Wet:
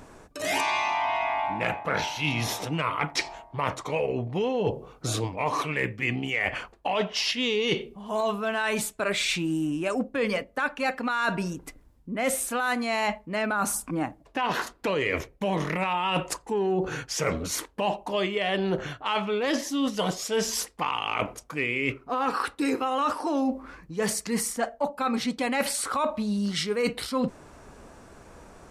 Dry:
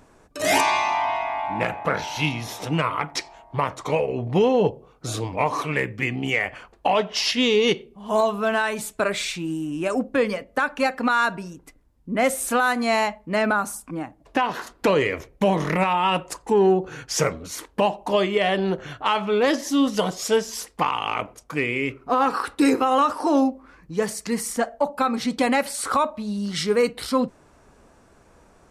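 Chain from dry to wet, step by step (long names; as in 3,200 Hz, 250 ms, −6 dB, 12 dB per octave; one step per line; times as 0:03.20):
dynamic equaliser 2,700 Hz, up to +4 dB, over −36 dBFS, Q 1.2
reversed playback
downward compressor 6 to 1, threshold −30 dBFS, peak gain reduction 15 dB
reversed playback
level +5.5 dB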